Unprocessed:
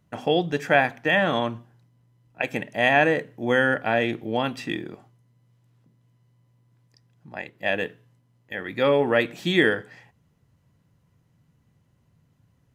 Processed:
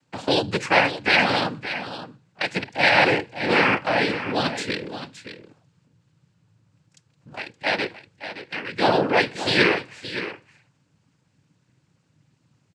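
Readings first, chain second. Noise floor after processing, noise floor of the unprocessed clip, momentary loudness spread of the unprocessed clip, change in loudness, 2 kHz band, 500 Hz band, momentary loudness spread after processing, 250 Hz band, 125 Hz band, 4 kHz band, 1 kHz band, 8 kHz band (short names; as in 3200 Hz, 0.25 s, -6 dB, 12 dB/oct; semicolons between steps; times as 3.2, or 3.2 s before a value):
-67 dBFS, -66 dBFS, 14 LU, +1.5 dB, +2.5 dB, -1.0 dB, 18 LU, 0.0 dB, 0.0 dB, +6.5 dB, +3.5 dB, n/a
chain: high shelf 2000 Hz +8 dB; noise vocoder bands 8; echo 0.57 s -11.5 dB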